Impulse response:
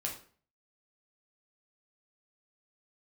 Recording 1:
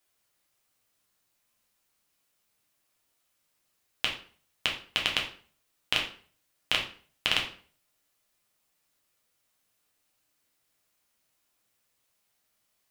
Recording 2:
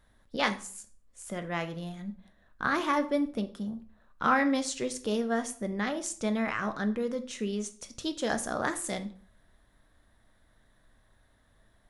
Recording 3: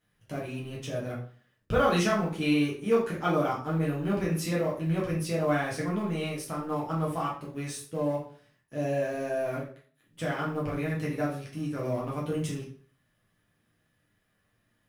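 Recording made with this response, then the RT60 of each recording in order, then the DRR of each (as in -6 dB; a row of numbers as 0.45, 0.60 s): 1; 0.45, 0.45, 0.45 s; -1.5, 8.0, -5.5 dB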